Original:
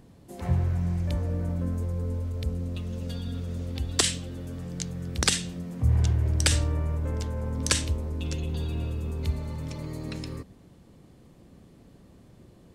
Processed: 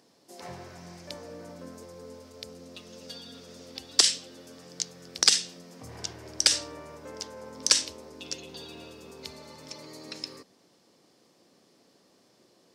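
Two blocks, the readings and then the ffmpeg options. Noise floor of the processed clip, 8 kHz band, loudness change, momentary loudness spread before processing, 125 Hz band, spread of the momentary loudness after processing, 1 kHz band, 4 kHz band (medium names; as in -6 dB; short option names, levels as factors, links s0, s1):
-64 dBFS, +3.0 dB, +2.5 dB, 12 LU, -25.0 dB, 24 LU, -3.0 dB, +5.5 dB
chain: -af "highpass=380,equalizer=f=5200:w=1.8:g=12.5,volume=0.708"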